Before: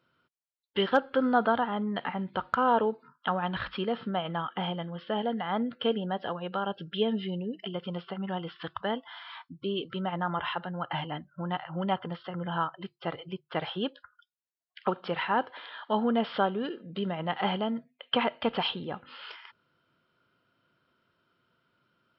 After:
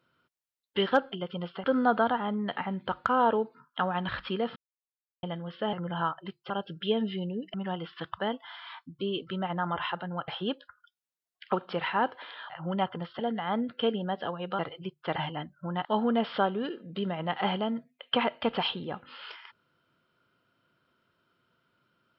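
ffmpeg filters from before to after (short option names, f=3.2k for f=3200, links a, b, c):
-filter_complex "[0:a]asplit=14[a][b][c][d][e][f][g][h][i][j][k][l][m][n];[a]atrim=end=1.122[o];[b]atrim=start=7.648:end=8.172[p];[c]atrim=start=1.118:end=4.04,asetpts=PTS-STARTPTS,afade=t=out:st=2.918:d=0.004:c=hsin[q];[d]atrim=start=4.04:end=4.71,asetpts=PTS-STARTPTS,volume=0[r];[e]atrim=start=4.71:end=5.212,asetpts=PTS-STARTPTS,afade=t=in:d=0.004:c=hsin[s];[f]atrim=start=12.288:end=13.062[t];[g]atrim=start=6.608:end=7.652[u];[h]atrim=start=8.168:end=10.912[v];[i]atrim=start=13.628:end=15.852[w];[j]atrim=start=11.598:end=12.292[x];[k]atrim=start=5.208:end=6.612[y];[l]atrim=start=13.058:end=13.632[z];[m]atrim=start=10.908:end=11.602[aa];[n]atrim=start=15.848[ab];[o][p]acrossfade=d=0.004:c1=hsin:c2=hsin[ac];[q][r][s]concat=n=3:v=0:a=1[ad];[ac][ad]acrossfade=d=0.004:c1=hsin:c2=hsin[ae];[ae][t]acrossfade=d=0.004:c1=hsin:c2=hsin[af];[af][u]acrossfade=d=0.004:c1=hsin:c2=hsin[ag];[ag][v]acrossfade=d=0.004:c1=hsin:c2=hsin[ah];[ah][w]acrossfade=d=0.004:c1=hsin:c2=hsin[ai];[ai][x]acrossfade=d=0.004:c1=hsin:c2=hsin[aj];[aj][y]acrossfade=d=0.004:c1=hsin:c2=hsin[ak];[ak][z]acrossfade=d=0.004:c1=hsin:c2=hsin[al];[al][aa]acrossfade=d=0.004:c1=hsin:c2=hsin[am];[am][ab]acrossfade=d=0.004:c1=hsin:c2=hsin"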